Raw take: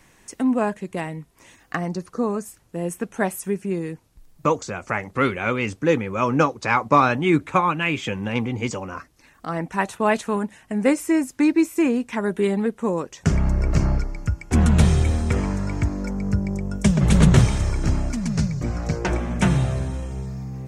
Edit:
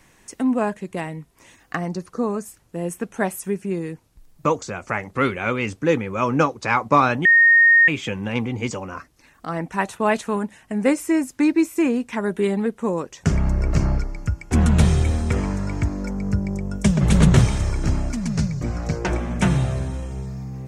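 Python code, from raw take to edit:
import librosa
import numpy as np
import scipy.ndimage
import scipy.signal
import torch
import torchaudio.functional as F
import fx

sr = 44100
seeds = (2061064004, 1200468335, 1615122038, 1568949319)

y = fx.edit(x, sr, fx.bleep(start_s=7.25, length_s=0.63, hz=1850.0, db=-9.5), tone=tone)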